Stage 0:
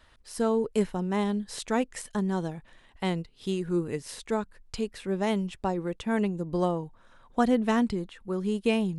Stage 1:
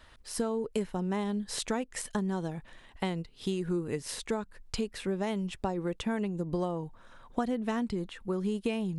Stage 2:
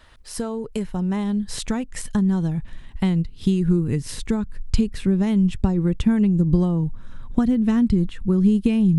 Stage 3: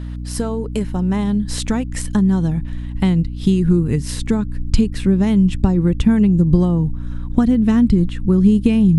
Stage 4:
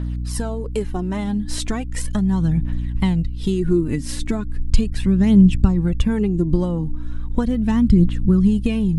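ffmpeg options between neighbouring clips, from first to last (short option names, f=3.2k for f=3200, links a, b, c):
-af "acompressor=threshold=-31dB:ratio=6,volume=3dB"
-af "asubboost=boost=9:cutoff=200,volume=4dB"
-af "aeval=exprs='val(0)+0.0316*(sin(2*PI*60*n/s)+sin(2*PI*2*60*n/s)/2+sin(2*PI*3*60*n/s)/3+sin(2*PI*4*60*n/s)/4+sin(2*PI*5*60*n/s)/5)':c=same,volume=4.5dB"
-af "aphaser=in_gain=1:out_gain=1:delay=3.8:decay=0.54:speed=0.37:type=triangular,volume=-3.5dB"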